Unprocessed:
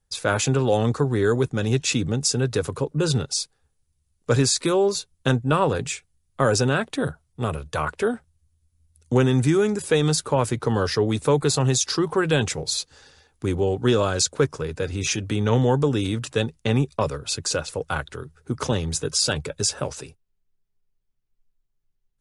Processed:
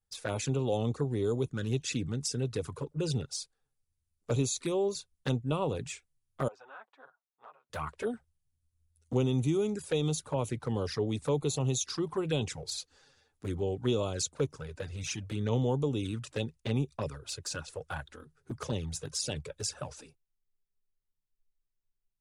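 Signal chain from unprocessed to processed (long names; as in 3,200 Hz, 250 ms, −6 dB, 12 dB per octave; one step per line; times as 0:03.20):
0:06.48–0:07.70: four-pole ladder band-pass 1,100 Hz, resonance 40%
flanger swept by the level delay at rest 10.3 ms, full sweep at −17.5 dBFS
level −9 dB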